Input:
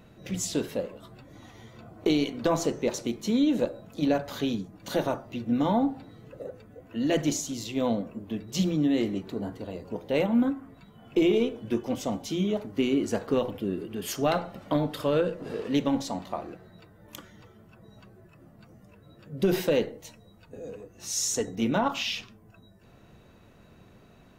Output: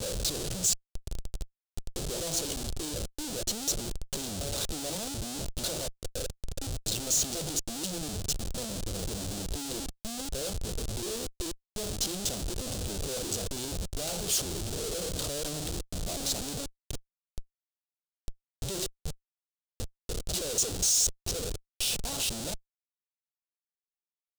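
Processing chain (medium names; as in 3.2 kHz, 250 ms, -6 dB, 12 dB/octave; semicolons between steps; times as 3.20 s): slices played last to first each 245 ms, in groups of 4; Schmitt trigger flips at -39.5 dBFS; graphic EQ 125/250/1000/2000/4000/8000 Hz -4/-10/-11/-12/+4/+8 dB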